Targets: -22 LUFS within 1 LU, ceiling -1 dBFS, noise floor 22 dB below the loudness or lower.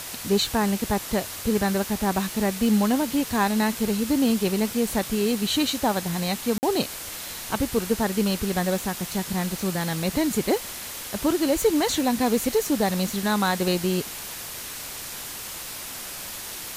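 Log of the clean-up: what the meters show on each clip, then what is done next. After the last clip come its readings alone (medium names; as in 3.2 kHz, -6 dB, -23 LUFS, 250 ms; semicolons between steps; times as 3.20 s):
dropouts 1; longest dropout 49 ms; noise floor -36 dBFS; noise floor target -47 dBFS; loudness -25.0 LUFS; peak level -9.5 dBFS; loudness target -22.0 LUFS
-> interpolate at 6.58 s, 49 ms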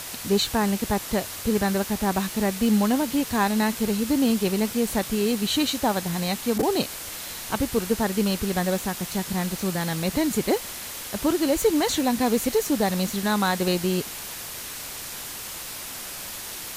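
dropouts 0; noise floor -36 dBFS; noise floor target -47 dBFS
-> noise print and reduce 11 dB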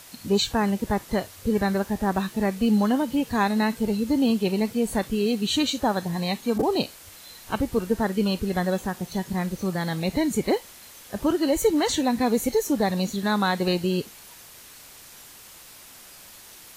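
noise floor -47 dBFS; loudness -24.5 LUFS; peak level -10.0 dBFS; loudness target -22.0 LUFS
-> trim +2.5 dB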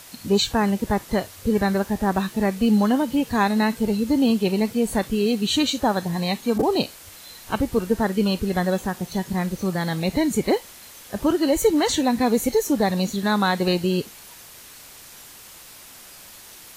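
loudness -22.0 LUFS; peak level -7.5 dBFS; noise floor -44 dBFS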